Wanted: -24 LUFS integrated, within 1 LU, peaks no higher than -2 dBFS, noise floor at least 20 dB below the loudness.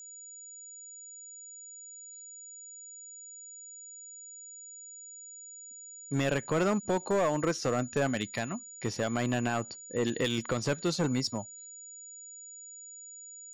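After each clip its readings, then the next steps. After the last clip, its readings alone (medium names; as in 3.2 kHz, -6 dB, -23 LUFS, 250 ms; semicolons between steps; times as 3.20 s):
clipped samples 0.9%; clipping level -22.0 dBFS; steady tone 6.9 kHz; tone level -45 dBFS; loudness -31.0 LUFS; peak level -22.0 dBFS; loudness target -24.0 LUFS
-> clip repair -22 dBFS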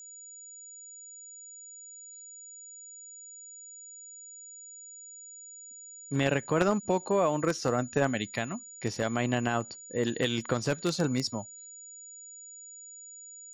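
clipped samples 0.0%; steady tone 6.9 kHz; tone level -45 dBFS
-> band-stop 6.9 kHz, Q 30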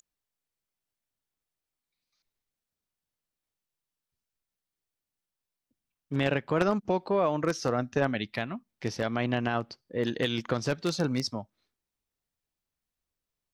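steady tone not found; loudness -30.0 LUFS; peak level -13.0 dBFS; loudness target -24.0 LUFS
-> trim +6 dB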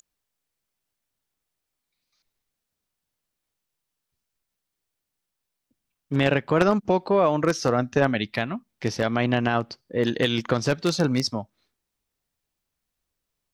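loudness -24.0 LUFS; peak level -7.0 dBFS; noise floor -83 dBFS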